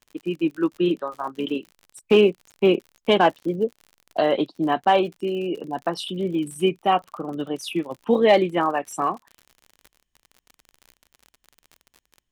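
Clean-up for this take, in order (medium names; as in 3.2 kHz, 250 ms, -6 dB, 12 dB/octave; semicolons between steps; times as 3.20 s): clip repair -8 dBFS; de-click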